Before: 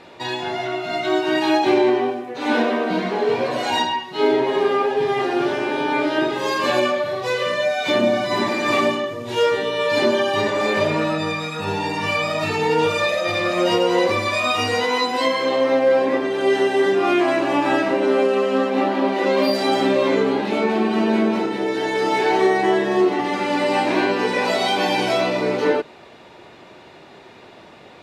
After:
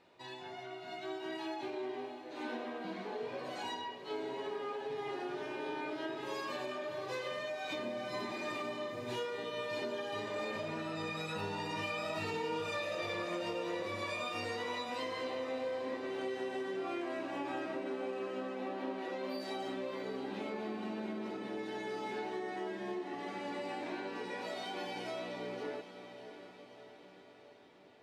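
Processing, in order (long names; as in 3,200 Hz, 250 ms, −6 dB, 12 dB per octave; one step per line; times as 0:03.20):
source passing by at 0:12.76, 7 m/s, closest 2.3 metres
downward compressor 10 to 1, threshold −47 dBFS, peak gain reduction 29.5 dB
feedback delay with all-pass diffusion 660 ms, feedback 58%, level −11 dB
level +10.5 dB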